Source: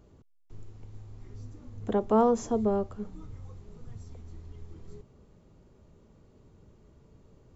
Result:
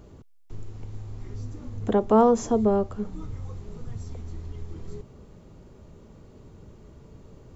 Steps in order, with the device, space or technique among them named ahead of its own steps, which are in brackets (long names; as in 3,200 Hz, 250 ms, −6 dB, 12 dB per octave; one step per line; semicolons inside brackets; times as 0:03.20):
parallel compression (in parallel at −2 dB: downward compressor, threshold −40 dBFS, peak gain reduction 19.5 dB)
on the sum: level +4 dB